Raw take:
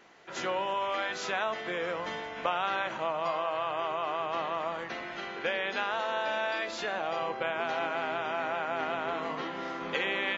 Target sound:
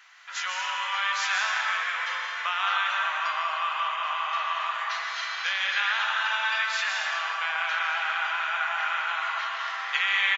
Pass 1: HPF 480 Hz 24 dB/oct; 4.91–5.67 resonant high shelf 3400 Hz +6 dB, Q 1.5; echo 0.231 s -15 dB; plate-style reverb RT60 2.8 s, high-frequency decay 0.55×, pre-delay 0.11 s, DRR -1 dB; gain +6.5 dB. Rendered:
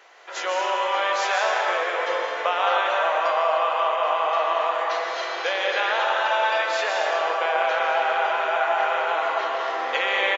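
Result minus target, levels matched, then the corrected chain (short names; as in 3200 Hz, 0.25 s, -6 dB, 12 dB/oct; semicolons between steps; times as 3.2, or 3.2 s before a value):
500 Hz band +18.0 dB
HPF 1200 Hz 24 dB/oct; 4.91–5.67 resonant high shelf 3400 Hz +6 dB, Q 1.5; echo 0.231 s -15 dB; plate-style reverb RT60 2.8 s, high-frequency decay 0.55×, pre-delay 0.11 s, DRR -1 dB; gain +6.5 dB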